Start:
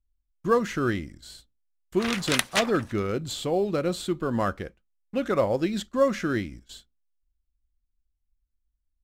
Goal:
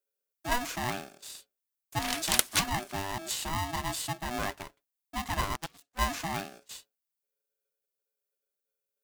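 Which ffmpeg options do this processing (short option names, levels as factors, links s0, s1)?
-filter_complex "[0:a]highpass=f=64:w=0.5412,highpass=f=64:w=1.3066,asettb=1/sr,asplit=3[s0][s1][s2];[s0]atrim=end=5.544[s3];[s1]atrim=start=5.54:end=5.99,asetpts=PTS-STARTPTS,afade=t=in:d=0.004:c=qsin,afade=t=out:st=0.446:d=0.004:c=qsin,aeval=exprs='0.211*(cos(1*acos(clip(val(0)/0.211,-1,1)))-cos(1*PI/2))+0.075*(cos(3*acos(clip(val(0)/0.211,-1,1)))-cos(3*PI/2))':c=same[s4];[s2]atrim=start=5.986[s5];[s3][s4]acrossfade=d=0.004:c1=hsin:c2=qsin[s6];[s6][s5]acrossfade=d=0.004:c1=qsin:c2=hsin,aemphasis=mode=production:type=75kf,aeval=exprs='val(0)*sgn(sin(2*PI*490*n/s))':c=same,volume=0.398"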